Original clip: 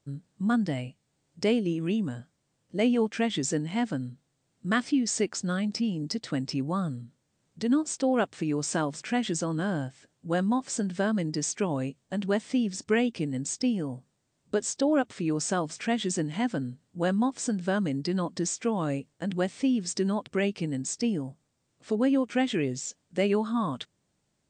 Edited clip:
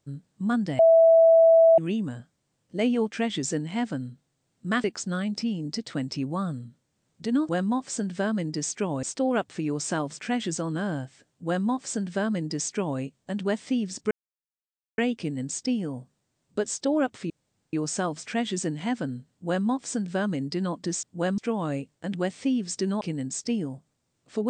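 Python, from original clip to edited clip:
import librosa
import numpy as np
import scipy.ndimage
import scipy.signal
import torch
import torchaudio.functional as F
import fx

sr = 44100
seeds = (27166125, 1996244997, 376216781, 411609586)

y = fx.edit(x, sr, fx.bleep(start_s=0.79, length_s=0.99, hz=657.0, db=-12.5),
    fx.cut(start_s=4.84, length_s=0.37),
    fx.duplicate(start_s=10.29, length_s=1.54, to_s=7.86),
    fx.insert_silence(at_s=12.94, length_s=0.87),
    fx.insert_room_tone(at_s=15.26, length_s=0.43),
    fx.duplicate(start_s=16.84, length_s=0.35, to_s=18.56),
    fx.cut(start_s=20.19, length_s=0.36), tone=tone)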